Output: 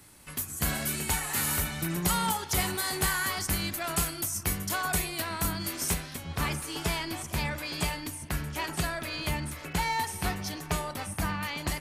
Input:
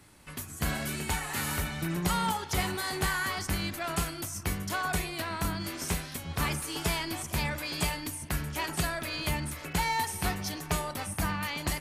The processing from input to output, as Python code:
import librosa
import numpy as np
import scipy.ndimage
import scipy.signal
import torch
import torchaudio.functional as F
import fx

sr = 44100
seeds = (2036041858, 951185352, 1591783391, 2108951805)

y = fx.high_shelf(x, sr, hz=6800.0, db=fx.steps((0.0, 10.0), (5.93, -2.0)))